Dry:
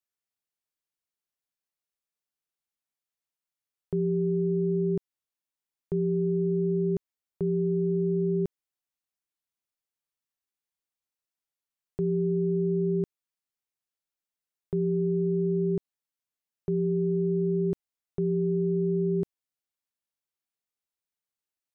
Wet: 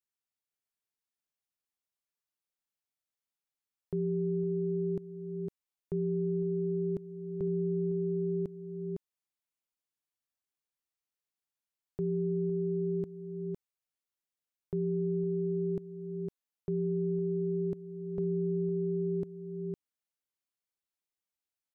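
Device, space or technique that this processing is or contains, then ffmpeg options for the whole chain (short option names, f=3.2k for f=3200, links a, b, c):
ducked delay: -filter_complex "[0:a]asplit=3[a][b][c];[b]adelay=507,volume=-3dB[d];[c]apad=whole_len=981495[e];[d][e]sidechaincompress=threshold=-37dB:ratio=8:attack=16:release=550[f];[a][f]amix=inputs=2:normalize=0,volume=-5dB"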